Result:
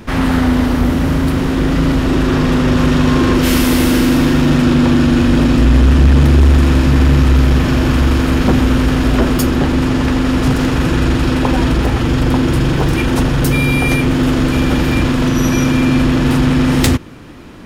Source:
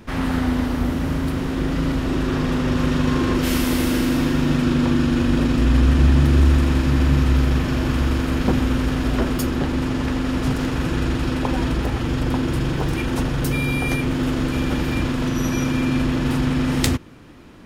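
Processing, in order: soft clip -12 dBFS, distortion -17 dB; gain +9 dB

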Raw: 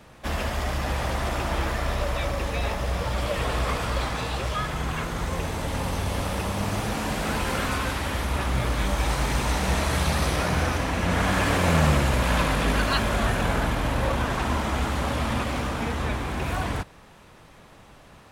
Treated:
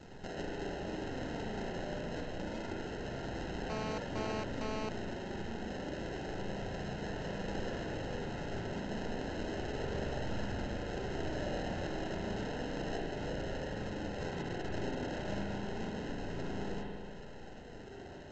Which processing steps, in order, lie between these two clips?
14.19–15.4 sine-wave speech; inverse Chebyshev high-pass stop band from 770 Hz, stop band 50 dB; compressor 3:1, threshold -51 dBFS, peak gain reduction 19.5 dB; sample-and-hold 38×; flange 0.29 Hz, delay 0.7 ms, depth 4.7 ms, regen +73%; spring tank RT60 2.1 s, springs 35/45 ms, chirp 25 ms, DRR -1.5 dB; 3.7–4.89 GSM buzz -51 dBFS; gain +11 dB; A-law 128 kbps 16000 Hz

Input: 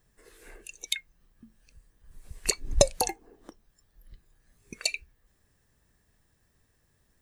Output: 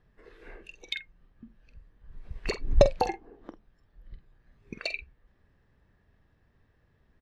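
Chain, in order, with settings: in parallel at -4.5 dB: hard clip -13.5 dBFS, distortion -11 dB; on the sum: air absorption 320 m; doubler 47 ms -11 dB

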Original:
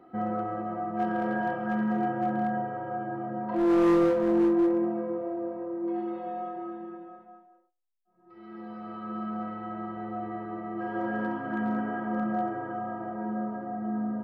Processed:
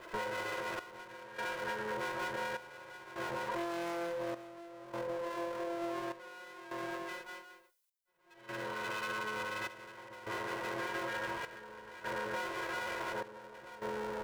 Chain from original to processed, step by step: minimum comb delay 2 ms; tilt +3 dB/oct; compressor 10:1, threshold -43 dBFS, peak gain reduction 20.5 dB; step gate "xxxx...xx" 76 bpm -12 dB; gain +8 dB

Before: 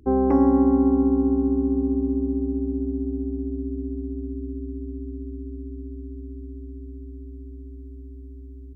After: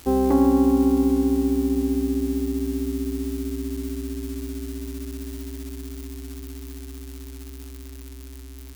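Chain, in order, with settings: switching spikes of -25.5 dBFS

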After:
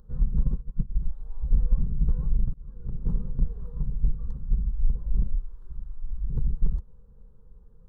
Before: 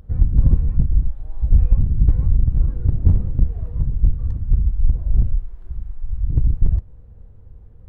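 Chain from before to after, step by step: fixed phaser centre 450 Hz, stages 8; 0.43–1.01 upward expander 2.5:1, over -25 dBFS; 2.54–3.46 fade in equal-power; gain -5 dB

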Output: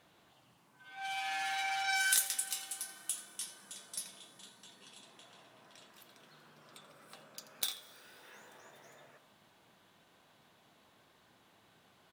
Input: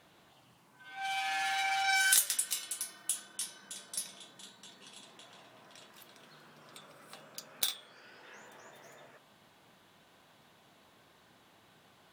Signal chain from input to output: on a send: echo 84 ms -16 dB; on the sum: plate-style reverb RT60 3.9 s, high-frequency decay 0.95×, DRR 17 dB; gain -3.5 dB

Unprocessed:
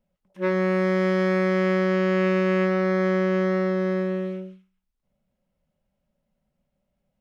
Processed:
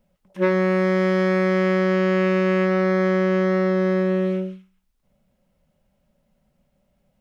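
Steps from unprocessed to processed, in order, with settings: compressor 5:1, threshold -25 dBFS, peak gain reduction 7 dB; gain +9 dB

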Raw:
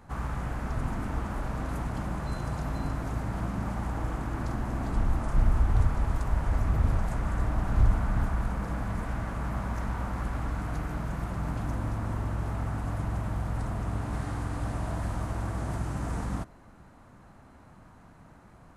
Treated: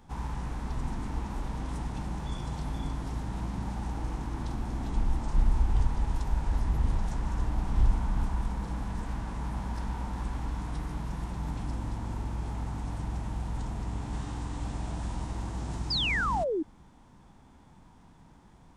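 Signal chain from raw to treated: fifteen-band EQ 100 Hz -7 dB, 630 Hz -9 dB, 1600 Hz -6 dB, 4000 Hz +3 dB; formant shift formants -3 st; painted sound fall, 15.9–16.63, 290–5200 Hz -29 dBFS

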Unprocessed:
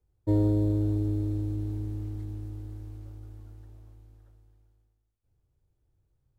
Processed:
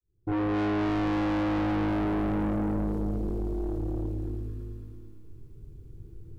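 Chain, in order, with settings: opening faded in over 1.71 s; resonant low shelf 510 Hz +8.5 dB, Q 3; in parallel at -0.5 dB: compressor, threshold -42 dBFS, peak gain reduction 21.5 dB; on the sum: multi-head echo 0.111 s, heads all three, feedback 54%, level -8 dB; on a send at -1.5 dB: reverb RT60 1.3 s, pre-delay 11 ms; on the sum: soft clip -31 dBFS, distortion -3 dB; gain +5 dB

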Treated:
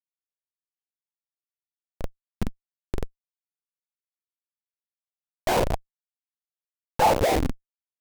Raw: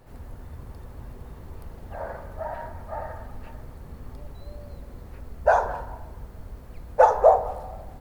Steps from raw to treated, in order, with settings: Schmitt trigger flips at -23.5 dBFS; vibrato 1.7 Hz 93 cents; LFO bell 0.39 Hz 220–2800 Hz +11 dB; gain +4 dB

